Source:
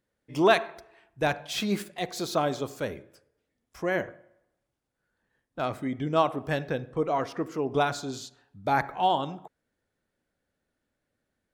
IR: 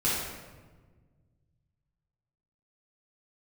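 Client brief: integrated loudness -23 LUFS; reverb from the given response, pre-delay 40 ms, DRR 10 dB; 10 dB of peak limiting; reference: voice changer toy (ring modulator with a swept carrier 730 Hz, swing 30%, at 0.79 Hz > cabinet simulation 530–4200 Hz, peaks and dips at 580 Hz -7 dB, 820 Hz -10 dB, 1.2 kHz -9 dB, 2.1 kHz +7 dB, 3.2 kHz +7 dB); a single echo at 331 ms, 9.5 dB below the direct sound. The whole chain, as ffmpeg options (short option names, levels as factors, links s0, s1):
-filter_complex "[0:a]alimiter=limit=0.133:level=0:latency=1,aecho=1:1:331:0.335,asplit=2[s0][s1];[1:a]atrim=start_sample=2205,adelay=40[s2];[s1][s2]afir=irnorm=-1:irlink=0,volume=0.0891[s3];[s0][s3]amix=inputs=2:normalize=0,aeval=exprs='val(0)*sin(2*PI*730*n/s+730*0.3/0.79*sin(2*PI*0.79*n/s))':c=same,highpass=530,equalizer=f=580:t=q:w=4:g=-7,equalizer=f=820:t=q:w=4:g=-10,equalizer=f=1200:t=q:w=4:g=-9,equalizer=f=2100:t=q:w=4:g=7,equalizer=f=3200:t=q:w=4:g=7,lowpass=f=4200:w=0.5412,lowpass=f=4200:w=1.3066,volume=4.22"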